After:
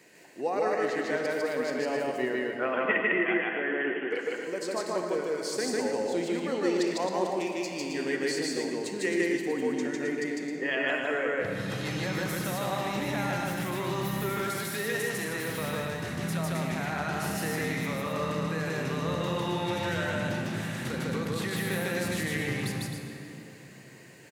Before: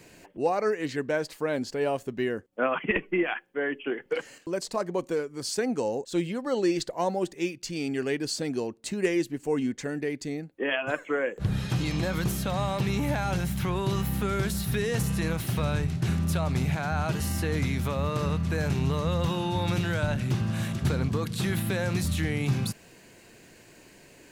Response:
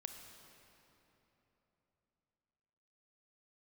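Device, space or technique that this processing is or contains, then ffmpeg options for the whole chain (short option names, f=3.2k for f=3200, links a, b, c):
stadium PA: -filter_complex "[0:a]asettb=1/sr,asplit=3[a][b][c];[a]atrim=end=14.424[d];[b]atrim=start=14.42:end=15.31,asetpts=PTS-STARTPTS,afade=t=in:d=0.004:c=qsin,afade=t=out:st=0.886:d=0.004:c=qsin,equalizer=f=86:t=o:w=1.6:g=-13.5[e];[c]atrim=start=15.306[f];[d][e]acrossfade=d=0.004:c1=hsin:c2=qsin[g];[g][f]acrossfade=d=0.004:c1=qsin:c2=hsin,highpass=220,equalizer=f=1.9k:t=o:w=0.21:g=8,aecho=1:1:151.6|265.3:1|0.447[h];[1:a]atrim=start_sample=2205[i];[h][i]afir=irnorm=-1:irlink=0"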